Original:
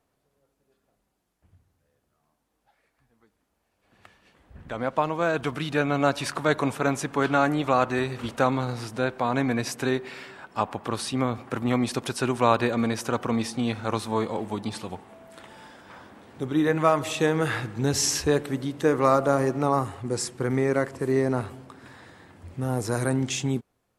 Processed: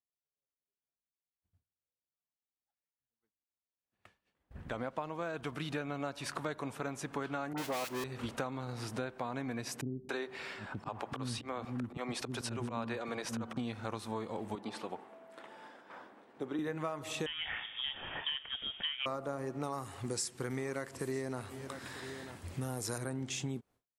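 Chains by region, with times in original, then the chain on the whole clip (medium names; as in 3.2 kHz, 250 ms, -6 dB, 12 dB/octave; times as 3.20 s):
7.53–8.04 s: square wave that keeps the level + high-pass 340 Hz 6 dB/octave + phase dispersion highs, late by 47 ms, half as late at 1.4 kHz
9.81–13.57 s: treble shelf 11 kHz -9 dB + slow attack 186 ms + bands offset in time lows, highs 280 ms, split 300 Hz
14.55–16.59 s: high-pass 300 Hz + treble shelf 3.6 kHz -11.5 dB
17.26–19.06 s: high-pass 470 Hz 6 dB/octave + frequency inversion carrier 3.5 kHz
19.63–22.98 s: treble shelf 2.2 kHz +11 dB + delay 944 ms -22.5 dB
whole clip: expander -46 dBFS; compression 6:1, threshold -33 dBFS; trim -2 dB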